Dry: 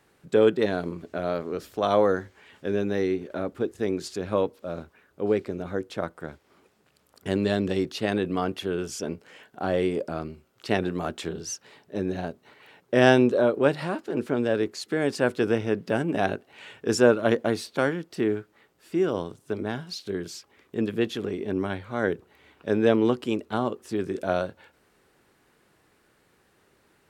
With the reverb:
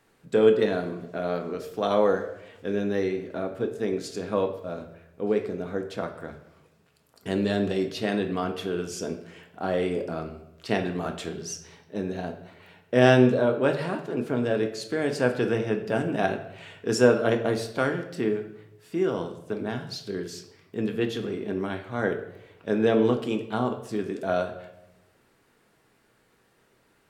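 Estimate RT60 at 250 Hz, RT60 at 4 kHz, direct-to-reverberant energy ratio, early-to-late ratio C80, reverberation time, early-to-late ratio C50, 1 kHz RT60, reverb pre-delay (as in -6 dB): 1.1 s, 0.65 s, 4.0 dB, 12.5 dB, 0.85 s, 9.5 dB, 0.75 s, 4 ms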